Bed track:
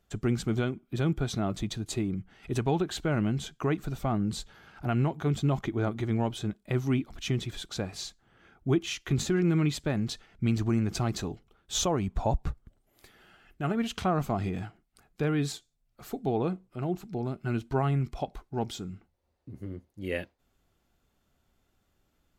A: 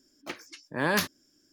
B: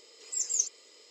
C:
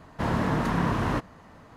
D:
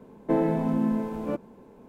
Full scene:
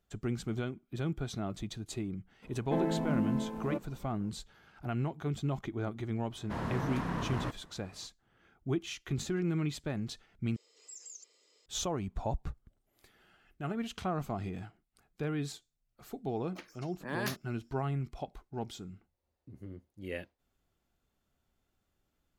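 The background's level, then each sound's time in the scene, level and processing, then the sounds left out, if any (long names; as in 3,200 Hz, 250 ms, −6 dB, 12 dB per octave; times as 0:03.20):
bed track −7 dB
0:02.42: mix in D −6 dB + parametric band 410 Hz −3 dB
0:06.31: mix in C −10 dB
0:10.56: overwrite with B −12 dB + downward compressor 12 to 1, threshold −32 dBFS
0:16.29: mix in A −10.5 dB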